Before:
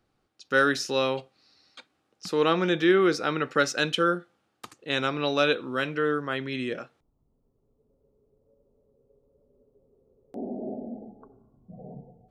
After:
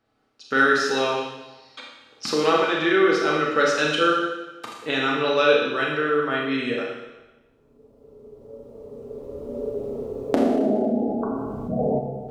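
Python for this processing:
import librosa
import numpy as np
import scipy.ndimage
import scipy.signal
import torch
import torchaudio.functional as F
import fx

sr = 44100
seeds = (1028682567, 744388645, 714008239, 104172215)

y = fx.recorder_agc(x, sr, target_db=-17.0, rise_db_per_s=9.9, max_gain_db=30)
y = fx.lowpass(y, sr, hz=3800.0, slope=6)
y = fx.low_shelf(y, sr, hz=180.0, db=-10.0)
y = fx.notch_comb(y, sr, f0_hz=180.0)
y = fx.rev_schroeder(y, sr, rt60_s=1.1, comb_ms=26, drr_db=-1.5)
y = fx.env_flatten(y, sr, amount_pct=50, at=(10.5, 11.99))
y = y * librosa.db_to_amplitude(3.5)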